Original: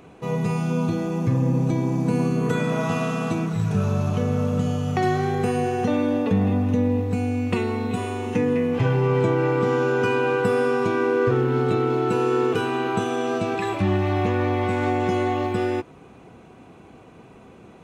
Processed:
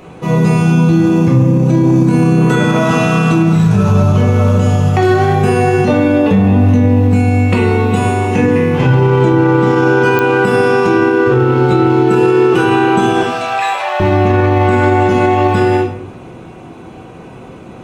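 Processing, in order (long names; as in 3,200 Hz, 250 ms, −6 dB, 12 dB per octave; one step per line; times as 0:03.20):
0:13.21–0:14.00: Butterworth high-pass 540 Hz 48 dB per octave
convolution reverb RT60 0.65 s, pre-delay 5 ms, DRR −2 dB
digital clicks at 0:10.19, −2 dBFS
boost into a limiter +10.5 dB
level −1.5 dB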